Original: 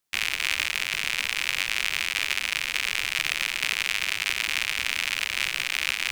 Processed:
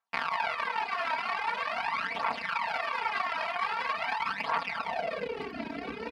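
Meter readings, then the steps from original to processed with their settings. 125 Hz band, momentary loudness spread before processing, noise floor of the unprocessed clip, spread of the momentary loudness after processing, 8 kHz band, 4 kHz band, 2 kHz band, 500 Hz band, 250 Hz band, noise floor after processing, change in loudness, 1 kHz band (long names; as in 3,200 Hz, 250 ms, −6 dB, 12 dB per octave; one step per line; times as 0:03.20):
can't be measured, 1 LU, −33 dBFS, 5 LU, below −25 dB, −15.0 dB, −8.0 dB, +11.5 dB, +9.0 dB, −41 dBFS, −6.5 dB, +10.0 dB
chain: lower of the sound and its delayed copy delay 4.4 ms
double-tracking delay 31 ms −8 dB
multi-tap delay 184/851 ms −3.5/−6.5 dB
band-pass filter sweep 960 Hz → 350 Hz, 0:04.66–0:05.55
downward compressor, threshold −32 dBFS, peak gain reduction 4 dB
phase shifter 0.44 Hz, delay 3.2 ms, feedback 44%
reverb reduction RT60 1.5 s
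high-pass filter 59 Hz
parametric band 380 Hz −12 dB 1.1 octaves
level +9 dB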